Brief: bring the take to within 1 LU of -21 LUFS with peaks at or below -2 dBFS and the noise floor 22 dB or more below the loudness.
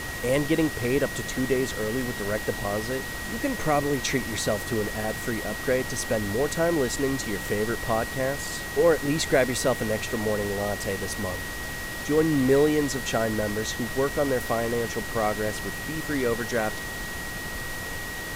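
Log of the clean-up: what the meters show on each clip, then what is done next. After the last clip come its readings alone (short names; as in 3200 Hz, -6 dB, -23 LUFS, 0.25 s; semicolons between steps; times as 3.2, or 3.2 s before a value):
steady tone 1900 Hz; tone level -35 dBFS; noise floor -34 dBFS; noise floor target -49 dBFS; loudness -26.5 LUFS; peak -9.5 dBFS; loudness target -21.0 LUFS
-> notch 1900 Hz, Q 30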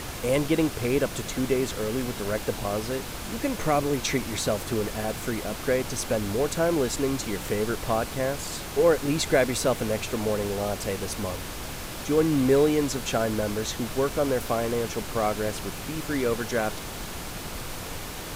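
steady tone none; noise floor -36 dBFS; noise floor target -49 dBFS
-> noise print and reduce 13 dB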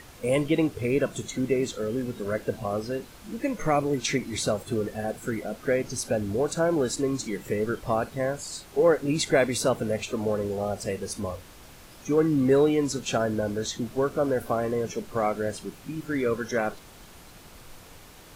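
noise floor -49 dBFS; loudness -27.0 LUFS; peak -10.0 dBFS; loudness target -21.0 LUFS
-> gain +6 dB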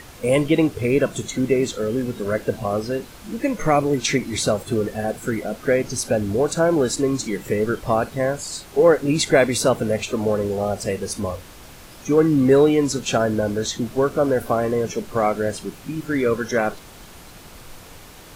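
loudness -21.0 LUFS; peak -4.0 dBFS; noise floor -43 dBFS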